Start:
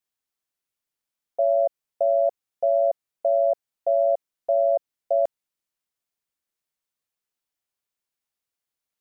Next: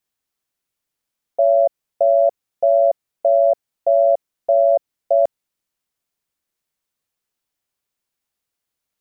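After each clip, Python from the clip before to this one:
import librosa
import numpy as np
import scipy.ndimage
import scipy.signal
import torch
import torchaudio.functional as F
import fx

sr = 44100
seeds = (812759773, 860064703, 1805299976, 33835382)

y = fx.low_shelf(x, sr, hz=400.0, db=3.5)
y = y * 10.0 ** (5.0 / 20.0)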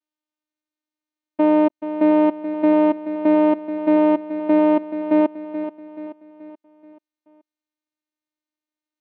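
y = fx.vocoder(x, sr, bands=4, carrier='saw', carrier_hz=305.0)
y = fx.echo_feedback(y, sr, ms=430, feedback_pct=46, wet_db=-11.0)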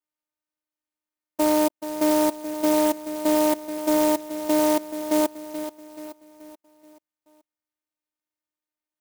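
y = fx.low_shelf(x, sr, hz=380.0, db=-10.5)
y = fx.clock_jitter(y, sr, seeds[0], jitter_ms=0.073)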